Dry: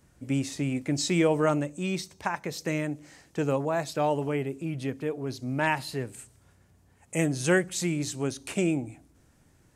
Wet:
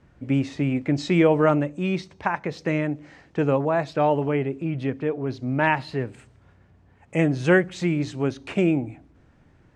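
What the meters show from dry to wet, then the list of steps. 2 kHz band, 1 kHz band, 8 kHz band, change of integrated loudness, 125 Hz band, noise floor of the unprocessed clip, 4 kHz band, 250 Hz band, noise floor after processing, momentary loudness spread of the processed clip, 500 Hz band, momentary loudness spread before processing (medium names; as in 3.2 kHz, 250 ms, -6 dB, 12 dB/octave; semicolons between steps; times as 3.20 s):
+4.5 dB, +5.5 dB, under -10 dB, +5.0 dB, +5.5 dB, -62 dBFS, -1.5 dB, +5.5 dB, -57 dBFS, 10 LU, +5.5 dB, 10 LU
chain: low-pass 2.8 kHz 12 dB/octave; trim +5.5 dB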